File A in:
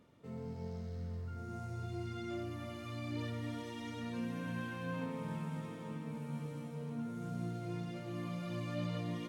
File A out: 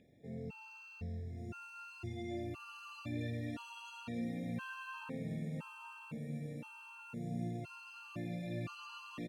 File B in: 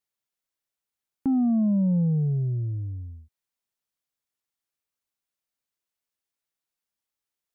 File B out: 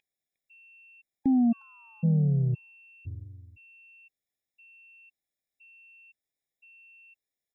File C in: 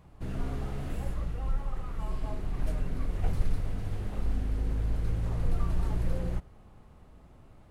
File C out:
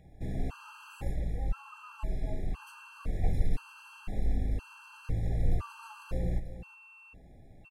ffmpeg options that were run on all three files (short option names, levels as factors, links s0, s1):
-af "aeval=exprs='val(0)+0.00316*sin(2*PI*2700*n/s)':c=same,aecho=1:1:358|716:0.251|0.0452,afftfilt=real='re*gt(sin(2*PI*0.98*pts/sr)*(1-2*mod(floor(b*sr/1024/820),2)),0)':imag='im*gt(sin(2*PI*0.98*pts/sr)*(1-2*mod(floor(b*sr/1024/820),2)),0)':win_size=1024:overlap=0.75"